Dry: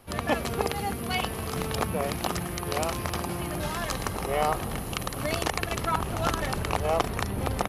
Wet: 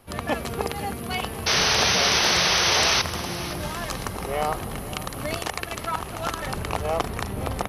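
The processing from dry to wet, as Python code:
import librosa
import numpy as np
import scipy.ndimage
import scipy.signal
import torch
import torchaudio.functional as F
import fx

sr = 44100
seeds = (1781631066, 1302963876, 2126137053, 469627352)

p1 = fx.spec_paint(x, sr, seeds[0], shape='noise', start_s=1.46, length_s=1.56, low_hz=350.0, high_hz=6300.0, level_db=-21.0)
p2 = fx.low_shelf(p1, sr, hz=410.0, db=-6.0, at=(5.37, 6.46))
y = p2 + fx.echo_feedback(p2, sr, ms=517, feedback_pct=35, wet_db=-15.0, dry=0)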